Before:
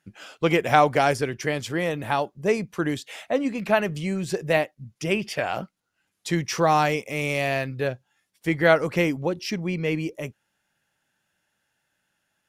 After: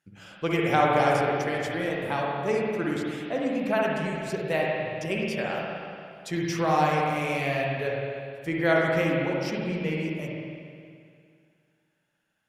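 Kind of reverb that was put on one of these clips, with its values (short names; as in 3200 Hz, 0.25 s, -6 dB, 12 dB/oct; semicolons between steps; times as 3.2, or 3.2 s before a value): spring tank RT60 2.3 s, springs 50/59 ms, chirp 45 ms, DRR -3 dB; gain -7 dB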